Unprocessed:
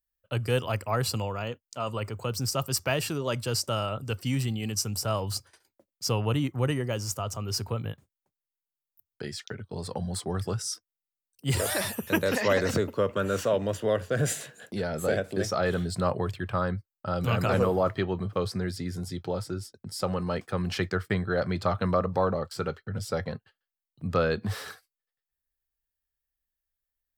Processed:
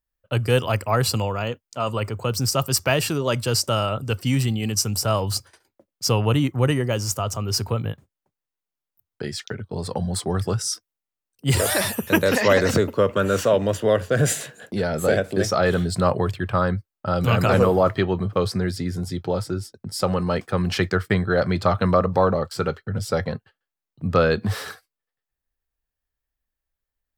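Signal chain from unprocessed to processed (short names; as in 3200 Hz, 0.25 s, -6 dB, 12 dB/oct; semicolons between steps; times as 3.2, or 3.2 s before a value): mismatched tape noise reduction decoder only; gain +7 dB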